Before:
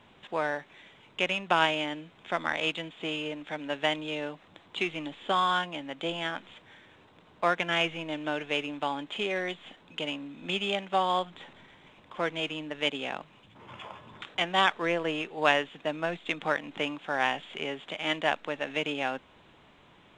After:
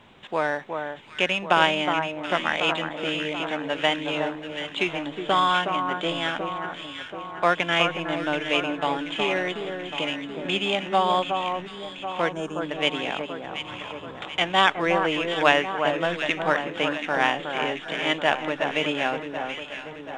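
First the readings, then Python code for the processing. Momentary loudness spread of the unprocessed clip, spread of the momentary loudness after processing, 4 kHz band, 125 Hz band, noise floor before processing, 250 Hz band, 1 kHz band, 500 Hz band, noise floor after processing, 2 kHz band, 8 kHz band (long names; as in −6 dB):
15 LU, 12 LU, +5.5 dB, +6.5 dB, −58 dBFS, +6.5 dB, +6.5 dB, +6.5 dB, −40 dBFS, +6.0 dB, +6.0 dB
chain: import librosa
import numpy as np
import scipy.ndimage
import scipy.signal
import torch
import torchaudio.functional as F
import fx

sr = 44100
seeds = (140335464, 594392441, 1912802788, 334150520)

y = fx.echo_alternate(x, sr, ms=366, hz=1600.0, feedback_pct=73, wet_db=-5.5)
y = fx.spec_box(y, sr, start_s=12.32, length_s=0.29, low_hz=1800.0, high_hz=5300.0, gain_db=-15)
y = F.gain(torch.from_numpy(y), 5.0).numpy()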